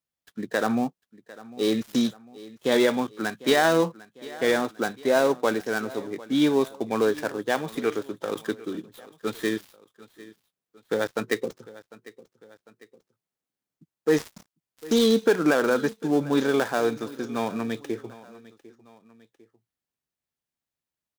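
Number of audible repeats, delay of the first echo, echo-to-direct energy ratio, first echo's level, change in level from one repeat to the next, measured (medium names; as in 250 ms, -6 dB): 2, 750 ms, -18.5 dB, -19.5 dB, -6.0 dB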